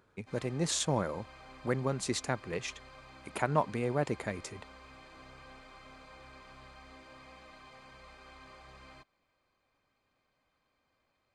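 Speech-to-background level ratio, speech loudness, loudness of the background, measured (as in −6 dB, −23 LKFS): 19.0 dB, −34.0 LKFS, −53.0 LKFS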